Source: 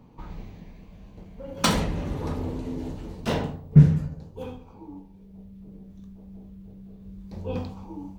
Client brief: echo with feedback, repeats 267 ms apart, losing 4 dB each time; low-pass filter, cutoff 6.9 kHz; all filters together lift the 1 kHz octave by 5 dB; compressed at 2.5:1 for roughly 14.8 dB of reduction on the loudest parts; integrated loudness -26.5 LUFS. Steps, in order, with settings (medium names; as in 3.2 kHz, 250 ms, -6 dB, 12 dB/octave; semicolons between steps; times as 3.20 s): low-pass 6.9 kHz; peaking EQ 1 kHz +6 dB; compression 2.5:1, threshold -31 dBFS; feedback delay 267 ms, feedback 63%, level -4 dB; trim +8 dB